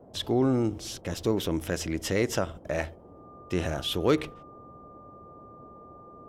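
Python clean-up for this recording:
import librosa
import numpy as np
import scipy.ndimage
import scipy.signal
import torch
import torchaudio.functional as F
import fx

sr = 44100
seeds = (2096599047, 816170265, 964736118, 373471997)

y = fx.fix_declip(x, sr, threshold_db=-14.0)
y = fx.notch(y, sr, hz=1200.0, q=30.0)
y = fx.noise_reduce(y, sr, print_start_s=2.94, print_end_s=3.44, reduce_db=24.0)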